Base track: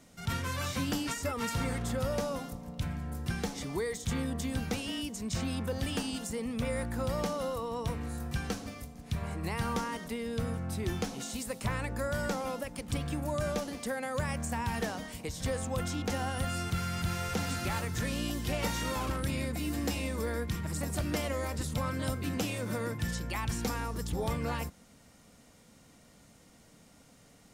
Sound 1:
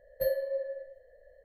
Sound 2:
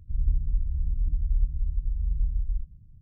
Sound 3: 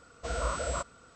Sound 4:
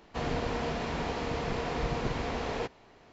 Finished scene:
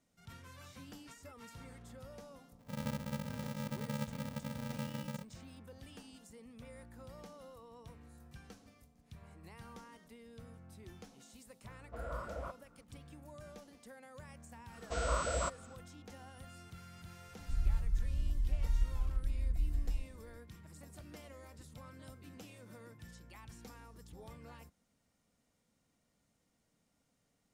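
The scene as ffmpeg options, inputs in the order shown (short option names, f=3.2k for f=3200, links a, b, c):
-filter_complex "[2:a]asplit=2[a][b];[3:a]asplit=2[c][d];[0:a]volume=-19.5dB[e];[a]aeval=exprs='val(0)*sgn(sin(2*PI*180*n/s))':c=same[f];[c]lowpass=1.5k[g];[f]atrim=end=3.01,asetpts=PTS-STARTPTS,volume=-17dB,afade=t=in:d=0.004:c=hsin,afade=t=out:st=3.006:d=0.004:c=hsin,adelay=2590[h];[g]atrim=end=1.15,asetpts=PTS-STARTPTS,volume=-9.5dB,afade=t=in:d=0.004:c=hsin,afade=t=out:st=1.146:d=0.004:c=hsin,adelay=11690[i];[d]atrim=end=1.15,asetpts=PTS-STARTPTS,volume=-2dB,afade=t=in:d=0.1,afade=t=out:st=1.05:d=0.1,adelay=14670[j];[b]atrim=end=3.01,asetpts=PTS-STARTPTS,volume=-7.5dB,afade=t=in:d=0.004:c=hsin,afade=t=out:st=3.006:d=0.004:c=hsin,adelay=17390[k];[e][h][i][j][k]amix=inputs=5:normalize=0"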